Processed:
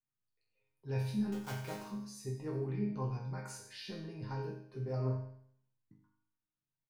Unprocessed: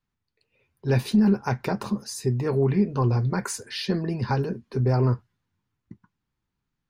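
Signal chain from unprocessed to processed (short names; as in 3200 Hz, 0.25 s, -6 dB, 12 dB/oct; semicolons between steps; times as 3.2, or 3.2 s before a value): 1.32–1.81 block floating point 3-bit; resonator bank G#2 major, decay 0.65 s; on a send: echo 93 ms -14.5 dB; on the sum: gain +1.5 dB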